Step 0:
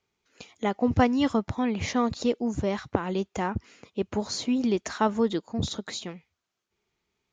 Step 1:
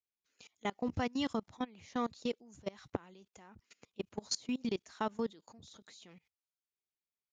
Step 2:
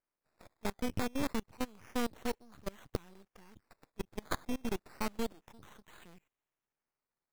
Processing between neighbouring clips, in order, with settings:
treble shelf 2.4 kHz +10 dB; level held to a coarse grid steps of 24 dB; trim -8.5 dB
decimation with a swept rate 12×, swing 60% 0.29 Hz; half-wave rectifier; trim +4 dB

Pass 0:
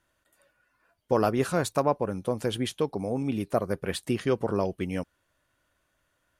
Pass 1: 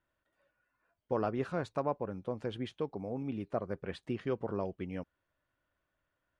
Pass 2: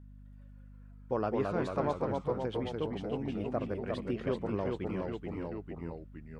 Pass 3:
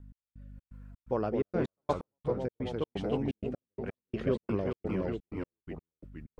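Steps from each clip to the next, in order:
Bessel low-pass 2.6 kHz, order 2; trim -8.5 dB
ever faster or slower copies 146 ms, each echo -1 st, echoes 3; hum 50 Hz, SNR 16 dB
trance gate "x..xx.xx.xxx.x.." 127 bpm -60 dB; rotary cabinet horn 0.9 Hz, later 6.3 Hz, at 4.00 s; trim +4.5 dB

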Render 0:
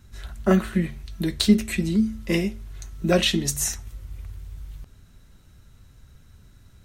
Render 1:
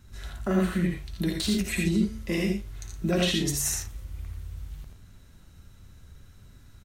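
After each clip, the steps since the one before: peak limiter -16.5 dBFS, peak gain reduction 11 dB; on a send: multi-tap echo 57/73/84/118 ms -9/-7/-4.5/-11 dB; on the sum: trim -2 dB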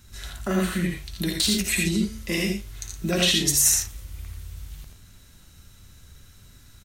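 treble shelf 2.1 kHz +10.5 dB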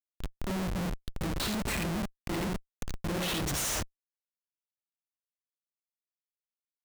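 in parallel at +2 dB: compression 12:1, threshold -29 dBFS, peak gain reduction 15 dB; on the sum: Schmitt trigger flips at -20 dBFS; trim -7.5 dB

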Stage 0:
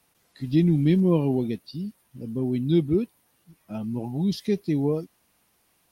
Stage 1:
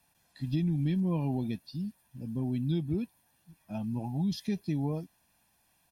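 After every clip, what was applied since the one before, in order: comb 1.2 ms, depth 60%; compression, threshold -21 dBFS, peak gain reduction 6.5 dB; trim -5 dB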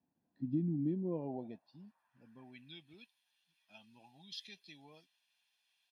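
band-pass sweep 270 Hz -> 3.3 kHz, 0.71–2.96 s; trim +1 dB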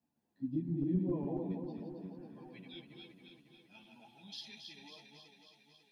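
backward echo that repeats 137 ms, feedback 79%, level -5 dB; three-phase chorus; trim +2.5 dB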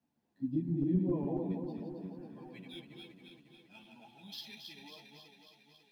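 median filter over 5 samples; trim +2.5 dB

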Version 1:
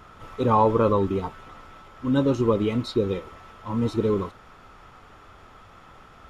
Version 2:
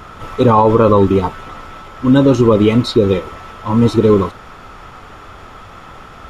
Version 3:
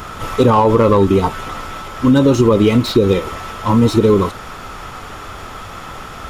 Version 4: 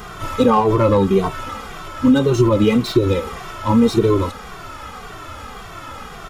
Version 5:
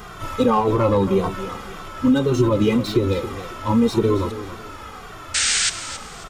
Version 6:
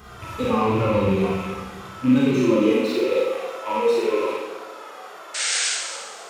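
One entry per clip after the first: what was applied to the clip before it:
loudness maximiser +14 dB; trim -1 dB
treble shelf 5.4 kHz +10.5 dB; compression 2.5:1, threshold -15 dBFS, peak gain reduction 6.5 dB; slew-rate limiter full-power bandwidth 220 Hz; trim +4.5 dB
endless flanger 2.1 ms -1.8 Hz
painted sound noise, 5.34–5.70 s, 1.3–9 kHz -16 dBFS; feedback delay 273 ms, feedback 31%, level -13 dB; trim -3.5 dB
rattle on loud lows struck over -30 dBFS, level -20 dBFS; high-pass sweep 68 Hz -> 520 Hz, 1.62–3.03 s; Schroeder reverb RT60 0.87 s, combs from 32 ms, DRR -4 dB; trim -8.5 dB

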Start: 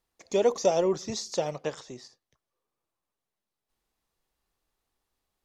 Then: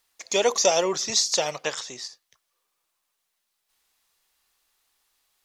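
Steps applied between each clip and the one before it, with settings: tilt shelf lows -10 dB, about 760 Hz; trim +4.5 dB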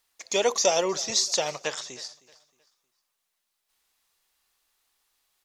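feedback delay 313 ms, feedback 35%, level -21.5 dB; trim -2 dB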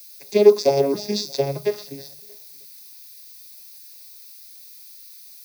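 vocoder on a broken chord bare fifth, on C#3, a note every 311 ms; added noise violet -43 dBFS; reverberation RT60 0.30 s, pre-delay 3 ms, DRR 13.5 dB; trim -1.5 dB

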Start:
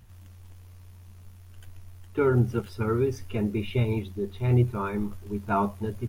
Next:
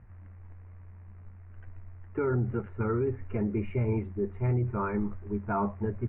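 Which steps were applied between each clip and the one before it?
steep low-pass 2.2 kHz 48 dB/octave; peak limiter -20.5 dBFS, peak gain reduction 9.5 dB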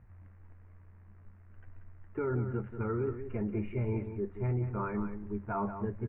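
delay 184 ms -9.5 dB; trim -4.5 dB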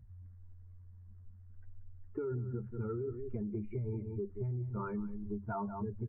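spectral contrast enhancement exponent 1.6; compression, threshold -36 dBFS, peak gain reduction 7.5 dB; trim +1.5 dB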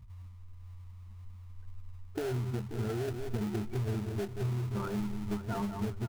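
feedback delay 533 ms, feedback 41%, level -12.5 dB; in parallel at -3.5 dB: sample-rate reducer 1.1 kHz, jitter 20%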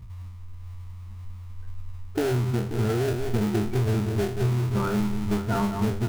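spectral sustain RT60 0.45 s; trim +8.5 dB

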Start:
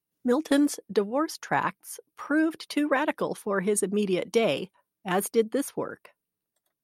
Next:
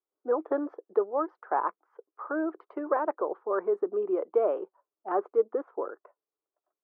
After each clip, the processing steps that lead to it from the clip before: Chebyshev band-pass 360–1300 Hz, order 3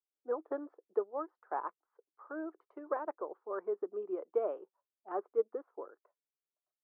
upward expansion 1.5:1, over -38 dBFS; trim -6 dB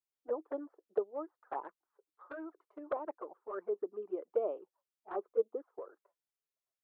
touch-sensitive flanger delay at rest 7.6 ms, full sweep at -32 dBFS; trim +1 dB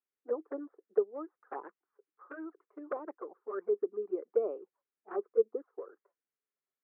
cabinet simulation 210–2100 Hz, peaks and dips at 220 Hz +4 dB, 420 Hz +4 dB, 630 Hz -8 dB, 910 Hz -7 dB; trim +2.5 dB

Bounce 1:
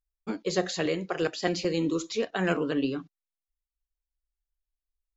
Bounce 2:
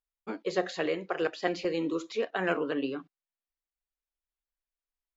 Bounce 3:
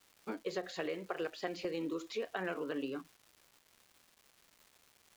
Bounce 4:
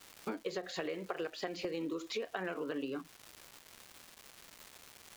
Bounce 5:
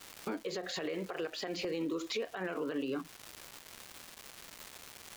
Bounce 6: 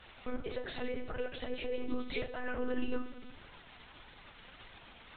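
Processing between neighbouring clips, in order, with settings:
tone controls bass -12 dB, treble -13 dB
compression, threshold -31 dBFS, peak gain reduction 9.5 dB; crackle 580 per s -48 dBFS; trim -3 dB
compression 3:1, threshold -50 dBFS, peak gain reduction 13.5 dB; trim +11 dB
peak limiter -32.5 dBFS, peak gain reduction 10.5 dB; trim +5 dB
reverberation RT60 0.95 s, pre-delay 6 ms, DRR 4.5 dB; monotone LPC vocoder at 8 kHz 250 Hz; flange 1.7 Hz, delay 1.8 ms, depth 2.8 ms, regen +63%; trim +3 dB

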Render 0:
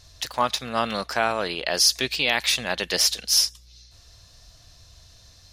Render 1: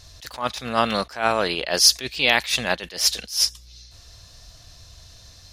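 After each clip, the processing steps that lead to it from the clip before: attacks held to a fixed rise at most 170 dB/s; trim +4.5 dB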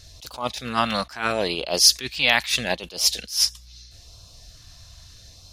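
LFO notch sine 0.77 Hz 380–1900 Hz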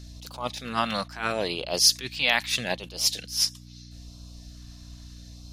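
hum 60 Hz, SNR 15 dB; trim -4 dB

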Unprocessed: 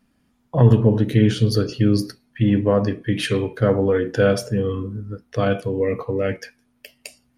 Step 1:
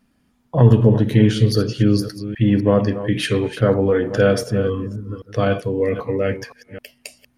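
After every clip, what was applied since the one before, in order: chunks repeated in reverse 261 ms, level -12 dB; trim +1.5 dB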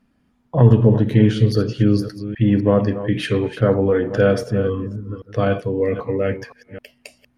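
treble shelf 4.3 kHz -10 dB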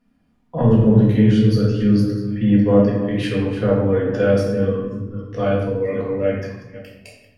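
simulated room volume 310 m³, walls mixed, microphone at 1.8 m; trim -6.5 dB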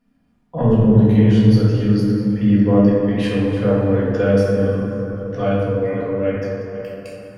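plate-style reverb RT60 4.2 s, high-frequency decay 0.45×, DRR 3.5 dB; trim -1 dB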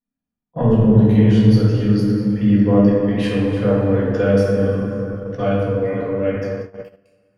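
gate -26 dBFS, range -24 dB

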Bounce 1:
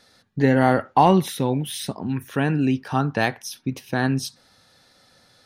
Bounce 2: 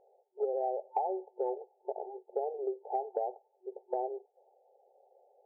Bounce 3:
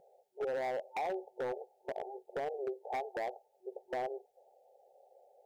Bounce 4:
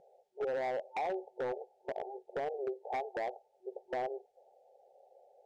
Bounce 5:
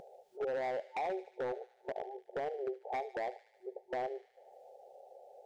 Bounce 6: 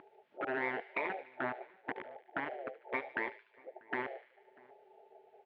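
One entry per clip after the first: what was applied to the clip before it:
FFT band-pass 370–890 Hz; compression 16:1, threshold -29 dBFS, peak gain reduction 17 dB
fifteen-band graphic EQ 160 Hz +7 dB, 400 Hz -10 dB, 1 kHz -12 dB; in parallel at +1.5 dB: peak limiter -37.5 dBFS, peak gain reduction 10 dB; on the sum: wavefolder -31 dBFS; trim +1 dB
distance through air 52 m; trim +1 dB
upward compressor, threshold -45 dBFS; feedback echo behind a high-pass 74 ms, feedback 65%, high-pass 2.5 kHz, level -11.5 dB; trim -1 dB
spectral gate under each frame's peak -10 dB weak; cabinet simulation 160–2600 Hz, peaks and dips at 160 Hz -8 dB, 500 Hz -5 dB, 770 Hz -5 dB; echo from a far wall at 110 m, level -25 dB; trim +10.5 dB

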